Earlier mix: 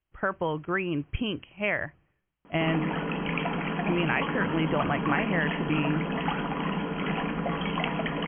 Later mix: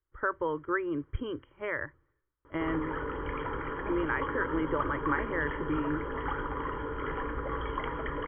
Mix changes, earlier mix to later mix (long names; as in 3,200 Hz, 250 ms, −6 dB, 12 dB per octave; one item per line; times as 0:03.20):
background: add low shelf with overshoot 140 Hz +8 dB, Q 3
master: add phaser with its sweep stopped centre 710 Hz, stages 6